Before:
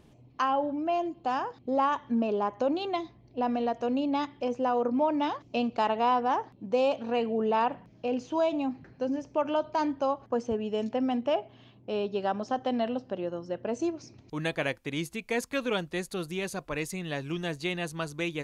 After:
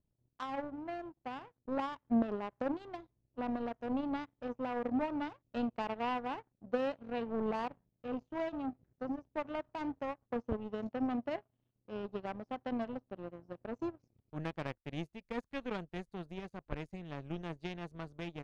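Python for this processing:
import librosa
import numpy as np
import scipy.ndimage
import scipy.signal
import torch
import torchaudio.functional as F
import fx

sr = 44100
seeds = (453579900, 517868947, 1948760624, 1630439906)

y = fx.riaa(x, sr, side='playback')
y = fx.power_curve(y, sr, exponent=2.0)
y = y * 10.0 ** (-5.5 / 20.0)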